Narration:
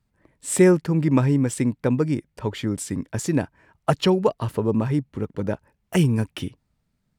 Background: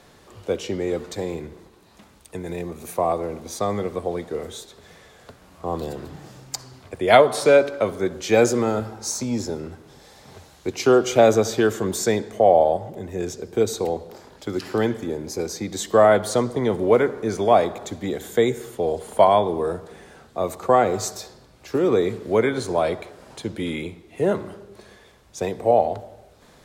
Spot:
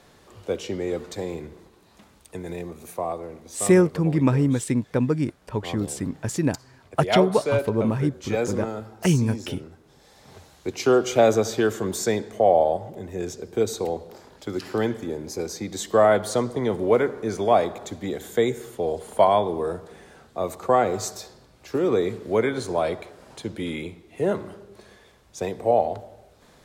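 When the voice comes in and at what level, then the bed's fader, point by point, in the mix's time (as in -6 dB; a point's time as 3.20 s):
3.10 s, -1.0 dB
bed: 2.49 s -2.5 dB
3.37 s -9 dB
9.82 s -9 dB
10.34 s -2.5 dB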